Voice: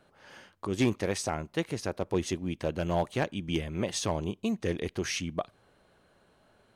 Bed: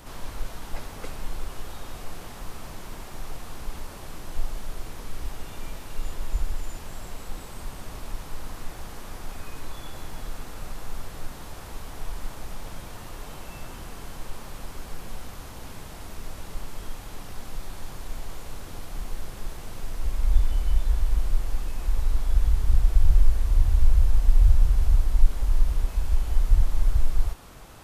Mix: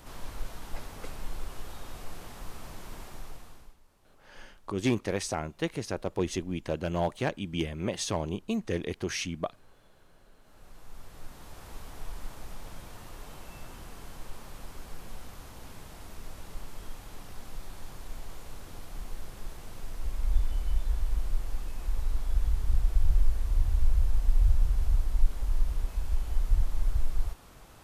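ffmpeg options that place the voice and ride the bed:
-filter_complex "[0:a]adelay=4050,volume=-0.5dB[a];[1:a]volume=15.5dB,afade=t=out:st=3.04:d=0.72:silence=0.0841395,afade=t=in:st=10.39:d=1.36:silence=0.1[b];[a][b]amix=inputs=2:normalize=0"

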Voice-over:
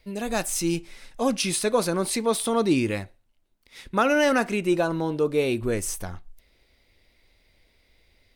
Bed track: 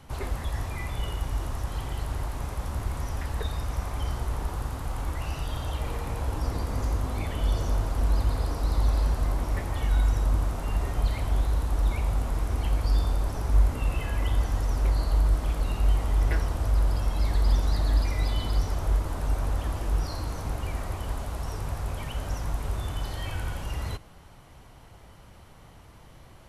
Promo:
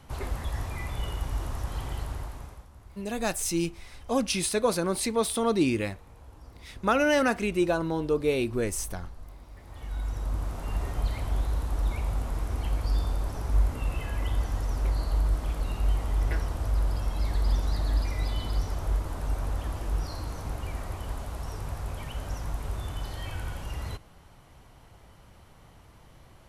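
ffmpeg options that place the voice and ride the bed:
-filter_complex "[0:a]adelay=2900,volume=-2.5dB[a];[1:a]volume=15.5dB,afade=t=out:st=1.94:d=0.73:silence=0.11885,afade=t=in:st=9.57:d=1.19:silence=0.141254[b];[a][b]amix=inputs=2:normalize=0"

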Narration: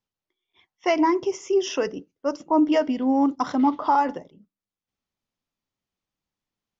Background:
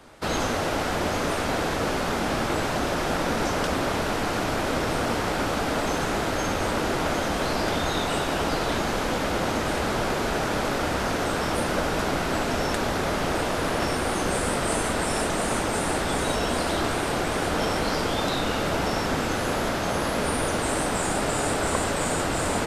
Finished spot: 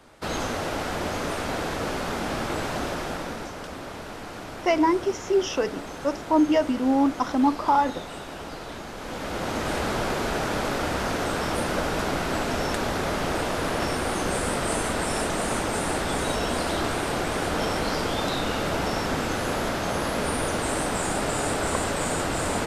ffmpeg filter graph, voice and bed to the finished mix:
-filter_complex "[0:a]adelay=3800,volume=-0.5dB[a];[1:a]volume=7.5dB,afade=t=out:st=2.82:d=0.7:silence=0.375837,afade=t=in:st=8.96:d=0.78:silence=0.298538[b];[a][b]amix=inputs=2:normalize=0"

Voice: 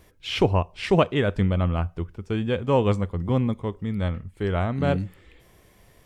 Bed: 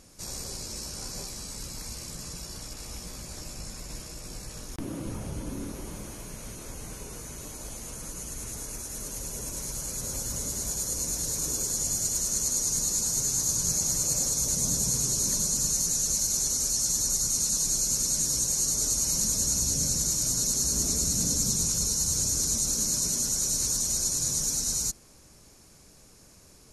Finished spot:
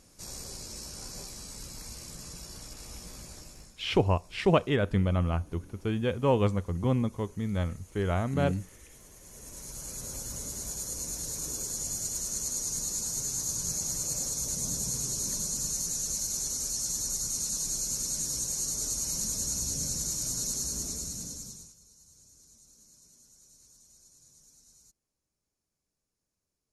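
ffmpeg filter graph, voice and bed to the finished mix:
-filter_complex "[0:a]adelay=3550,volume=-4dB[a];[1:a]volume=7.5dB,afade=t=out:st=3.23:d=0.53:silence=0.223872,afade=t=in:st=9.19:d=0.72:silence=0.251189,afade=t=out:st=20.51:d=1.24:silence=0.0501187[b];[a][b]amix=inputs=2:normalize=0"

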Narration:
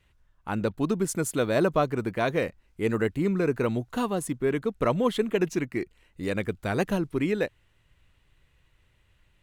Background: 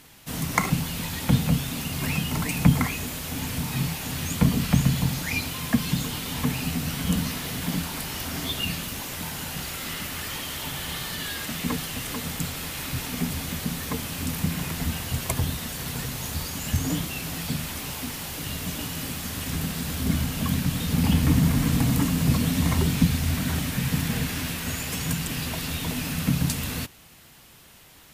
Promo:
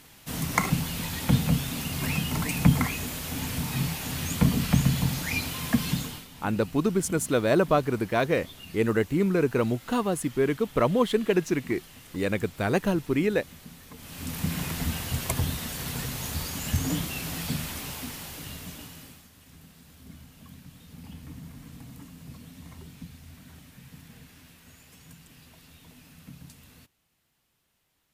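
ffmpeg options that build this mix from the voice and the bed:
-filter_complex "[0:a]adelay=5950,volume=1.5dB[a];[1:a]volume=14dB,afade=t=out:st=5.9:d=0.38:silence=0.16788,afade=t=in:st=13.96:d=0.6:silence=0.16788,afade=t=out:st=17.54:d=1.75:silence=0.0841395[b];[a][b]amix=inputs=2:normalize=0"

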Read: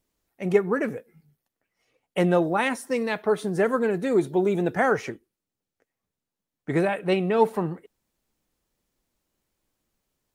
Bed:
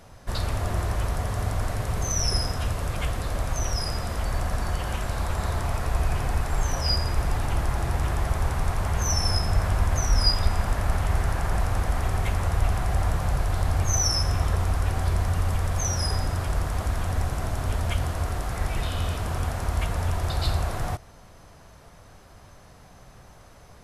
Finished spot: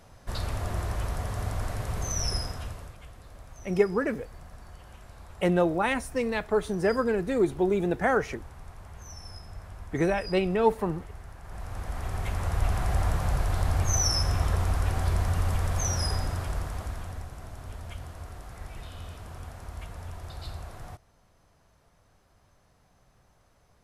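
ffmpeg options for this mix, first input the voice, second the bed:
-filter_complex "[0:a]adelay=3250,volume=-2.5dB[a];[1:a]volume=13.5dB,afade=t=out:st=2.26:d=0.71:silence=0.16788,afade=t=in:st=11.42:d=1.43:silence=0.125893,afade=t=out:st=15.96:d=1.31:silence=0.251189[b];[a][b]amix=inputs=2:normalize=0"

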